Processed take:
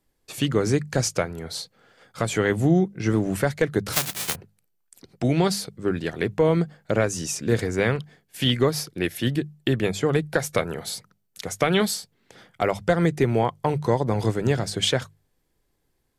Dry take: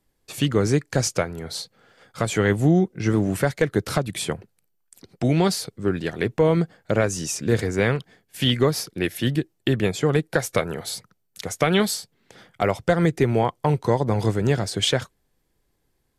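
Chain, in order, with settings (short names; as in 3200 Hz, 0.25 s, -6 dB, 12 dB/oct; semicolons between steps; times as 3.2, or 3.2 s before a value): 3.92–4.34 spectral whitening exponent 0.1; notches 50/100/150/200 Hz; gain -1 dB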